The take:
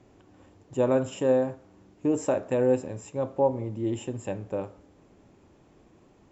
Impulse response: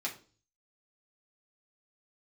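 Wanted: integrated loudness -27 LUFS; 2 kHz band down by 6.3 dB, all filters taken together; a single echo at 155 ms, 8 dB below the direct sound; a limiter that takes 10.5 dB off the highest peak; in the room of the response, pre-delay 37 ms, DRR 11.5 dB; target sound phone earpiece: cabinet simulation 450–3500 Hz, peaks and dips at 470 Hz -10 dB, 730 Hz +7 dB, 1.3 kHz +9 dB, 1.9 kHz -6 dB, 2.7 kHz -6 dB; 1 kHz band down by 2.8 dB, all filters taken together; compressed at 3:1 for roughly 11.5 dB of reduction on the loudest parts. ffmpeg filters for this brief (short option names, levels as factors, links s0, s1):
-filter_complex "[0:a]equalizer=f=1000:t=o:g=-8,equalizer=f=2000:t=o:g=-5,acompressor=threshold=0.0158:ratio=3,alimiter=level_in=2.99:limit=0.0631:level=0:latency=1,volume=0.335,aecho=1:1:155:0.398,asplit=2[s0][s1];[1:a]atrim=start_sample=2205,adelay=37[s2];[s1][s2]afir=irnorm=-1:irlink=0,volume=0.188[s3];[s0][s3]amix=inputs=2:normalize=0,highpass=450,equalizer=f=470:t=q:w=4:g=-10,equalizer=f=730:t=q:w=4:g=7,equalizer=f=1300:t=q:w=4:g=9,equalizer=f=1900:t=q:w=4:g=-6,equalizer=f=2700:t=q:w=4:g=-6,lowpass=f=3500:w=0.5412,lowpass=f=3500:w=1.3066,volume=14.1"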